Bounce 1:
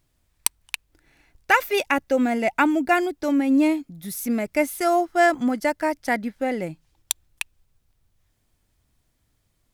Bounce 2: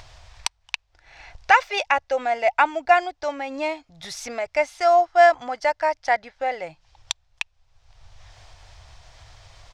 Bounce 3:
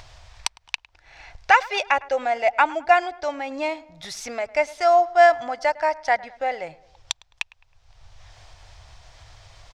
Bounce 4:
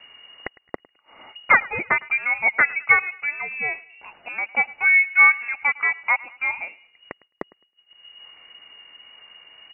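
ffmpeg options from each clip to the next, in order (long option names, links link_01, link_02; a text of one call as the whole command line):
ffmpeg -i in.wav -af "firequalizer=gain_entry='entry(110,0);entry(200,-22);entry(500,-1);entry(720,8);entry(1300,3);entry(5500,4);entry(12000,-27)':delay=0.05:min_phase=1,acompressor=mode=upward:threshold=-25dB:ratio=2.5,volume=-2dB" out.wav
ffmpeg -i in.wav -filter_complex "[0:a]asplit=2[link_01][link_02];[link_02]adelay=106,lowpass=frequency=2100:poles=1,volume=-20dB,asplit=2[link_03][link_04];[link_04]adelay=106,lowpass=frequency=2100:poles=1,volume=0.51,asplit=2[link_05][link_06];[link_06]adelay=106,lowpass=frequency=2100:poles=1,volume=0.51,asplit=2[link_07][link_08];[link_08]adelay=106,lowpass=frequency=2100:poles=1,volume=0.51[link_09];[link_01][link_03][link_05][link_07][link_09]amix=inputs=5:normalize=0" out.wav
ffmpeg -i in.wav -af "lowpass=frequency=2500:width_type=q:width=0.5098,lowpass=frequency=2500:width_type=q:width=0.6013,lowpass=frequency=2500:width_type=q:width=0.9,lowpass=frequency=2500:width_type=q:width=2.563,afreqshift=-2900,agate=range=-33dB:threshold=-49dB:ratio=3:detection=peak" out.wav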